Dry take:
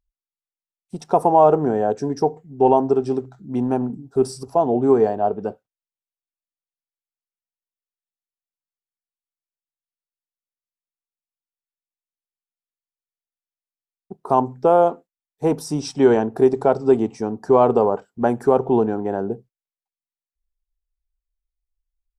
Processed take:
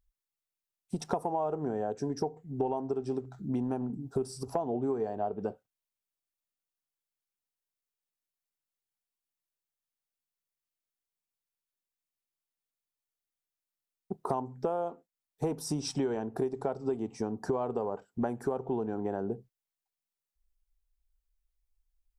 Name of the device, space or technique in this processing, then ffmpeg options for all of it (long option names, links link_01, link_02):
ASMR close-microphone chain: -af "lowshelf=frequency=130:gain=3.5,acompressor=threshold=-29dB:ratio=8,highshelf=frequency=8200:gain=4"